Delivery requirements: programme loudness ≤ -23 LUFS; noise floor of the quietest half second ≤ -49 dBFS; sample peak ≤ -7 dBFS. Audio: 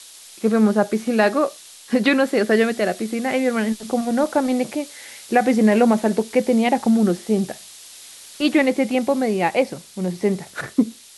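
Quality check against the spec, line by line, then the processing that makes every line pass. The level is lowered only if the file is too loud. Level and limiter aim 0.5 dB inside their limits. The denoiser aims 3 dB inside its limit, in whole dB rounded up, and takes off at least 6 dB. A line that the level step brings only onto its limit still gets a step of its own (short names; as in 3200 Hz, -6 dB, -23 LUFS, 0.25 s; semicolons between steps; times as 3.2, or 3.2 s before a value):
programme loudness -20.0 LUFS: fail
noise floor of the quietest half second -42 dBFS: fail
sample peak -5.5 dBFS: fail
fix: denoiser 7 dB, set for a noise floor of -42 dBFS; gain -3.5 dB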